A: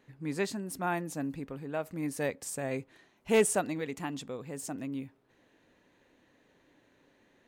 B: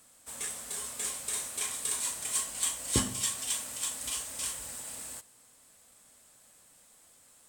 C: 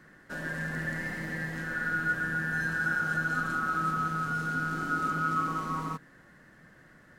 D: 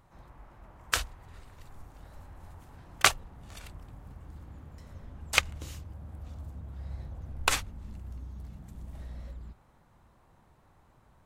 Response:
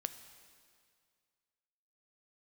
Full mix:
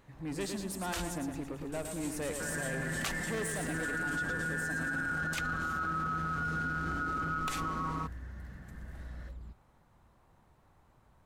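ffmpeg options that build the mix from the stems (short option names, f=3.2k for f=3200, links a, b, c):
-filter_complex "[0:a]asoftclip=type=tanh:threshold=-32.5dB,volume=0dB,asplit=2[a][b];[b]volume=-6dB[c];[1:a]afwtdn=0.00501,volume=-13.5dB,asplit=3[d][e][f];[d]atrim=end=1.18,asetpts=PTS-STARTPTS,afade=t=out:st=1.176:d=0.004:c=hsin[g];[e]atrim=start=1.18:end=1.72,asetpts=PTS-STARTPTS,volume=0[h];[f]atrim=start=1.72,asetpts=PTS-STARTPTS,afade=t=in:d=0.004:c=hsin[i];[g][h][i]concat=n=3:v=0:a=1[j];[2:a]highshelf=f=8.5k:g=-10.5,adelay=2100,volume=-0.5dB[k];[3:a]volume=-2.5dB[l];[c]aecho=0:1:111|222|333|444|555|666|777|888:1|0.55|0.303|0.166|0.0915|0.0503|0.0277|0.0152[m];[a][j][k][l][m]amix=inputs=5:normalize=0,volume=16dB,asoftclip=hard,volume=-16dB,alimiter=level_in=3dB:limit=-24dB:level=0:latency=1:release=13,volume=-3dB"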